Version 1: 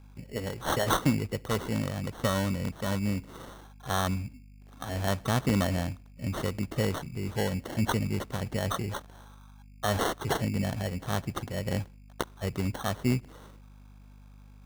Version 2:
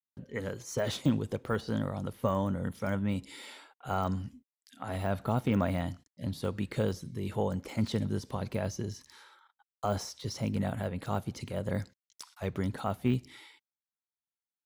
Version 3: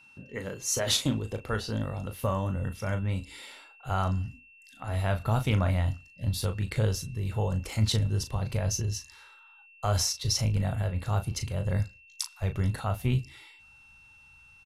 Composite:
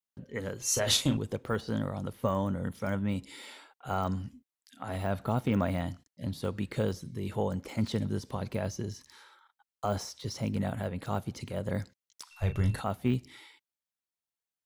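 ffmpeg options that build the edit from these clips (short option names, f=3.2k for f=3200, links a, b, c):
-filter_complex "[2:a]asplit=2[a][b];[1:a]asplit=3[c][d][e];[c]atrim=end=0.622[f];[a]atrim=start=0.618:end=1.172[g];[d]atrim=start=1.168:end=12.312[h];[b]atrim=start=12.308:end=12.822[i];[e]atrim=start=12.818[j];[f][g]acrossfade=d=0.004:c1=hsin:c2=hsin[k];[k][h]acrossfade=d=0.004:c1=hsin:c2=hsin[l];[l][i]acrossfade=d=0.004:c1=hsin:c2=hsin[m];[m][j]acrossfade=d=0.004:c1=hsin:c2=hsin"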